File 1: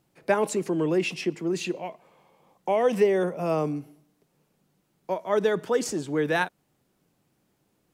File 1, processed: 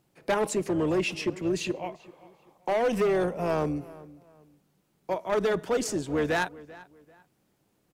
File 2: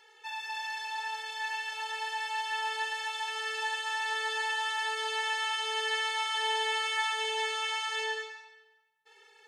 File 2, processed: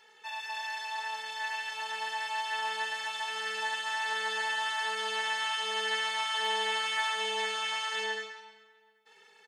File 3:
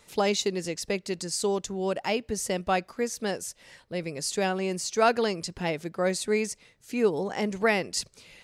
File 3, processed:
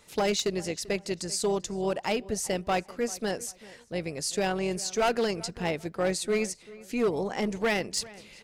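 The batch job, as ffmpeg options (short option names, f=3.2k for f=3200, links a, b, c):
-filter_complex "[0:a]asoftclip=type=hard:threshold=-20.5dB,tremolo=f=230:d=0.4,asplit=2[a][b];[b]adelay=390,lowpass=f=3k:p=1,volume=-19.5dB,asplit=2[c][d];[d]adelay=390,lowpass=f=3k:p=1,volume=0.3[e];[a][c][e]amix=inputs=3:normalize=0,volume=1.5dB"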